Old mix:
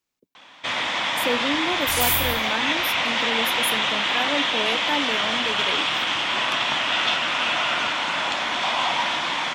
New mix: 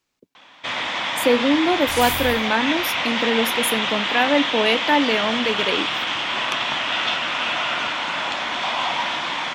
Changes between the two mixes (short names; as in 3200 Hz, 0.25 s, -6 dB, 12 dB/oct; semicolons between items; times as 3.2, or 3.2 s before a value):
speech +8.5 dB; master: add high shelf 9900 Hz -10 dB